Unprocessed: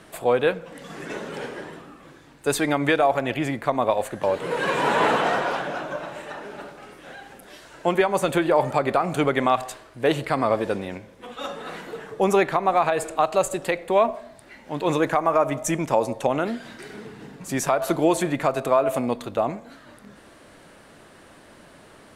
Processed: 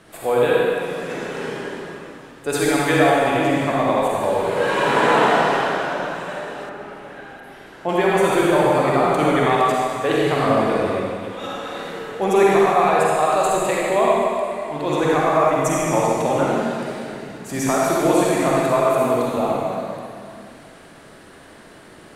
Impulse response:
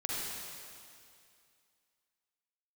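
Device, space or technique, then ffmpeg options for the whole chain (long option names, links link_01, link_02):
stairwell: -filter_complex "[1:a]atrim=start_sample=2205[link_01];[0:a][link_01]afir=irnorm=-1:irlink=0,asettb=1/sr,asplit=3[link_02][link_03][link_04];[link_02]atrim=end=6.694[link_05];[link_03]atrim=start=6.69:end=7.89,asetpts=PTS-STARTPTS,afade=type=in:duration=0.004:curve=qsin,afade=type=out:start_time=1.196:duration=0.004:curve=qsin,acrossover=split=2700[link_06][link_07];[link_07]acompressor=threshold=-56dB:ratio=4:attack=1:release=60[link_08];[link_06][link_08]amix=inputs=2:normalize=0[link_09];[link_04]atrim=start=7.886[link_10];[link_05][link_09]acrossfade=duration=0.004:curve1=hsin:curve2=qsin[link_11];[link_11][link_10]acrossfade=duration=0.004:curve1=qsin:curve2=hsin"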